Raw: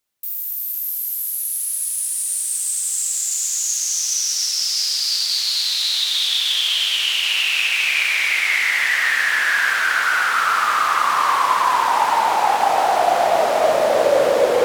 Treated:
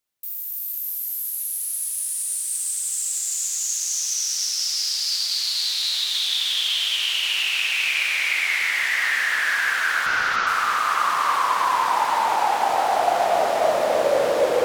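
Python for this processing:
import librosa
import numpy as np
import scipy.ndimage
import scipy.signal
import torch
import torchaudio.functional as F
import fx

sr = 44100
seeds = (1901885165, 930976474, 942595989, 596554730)

p1 = fx.delta_mod(x, sr, bps=32000, step_db=-23.0, at=(10.06, 10.47))
p2 = p1 + fx.echo_single(p1, sr, ms=297, db=-6.5, dry=0)
y = F.gain(torch.from_numpy(p2), -4.5).numpy()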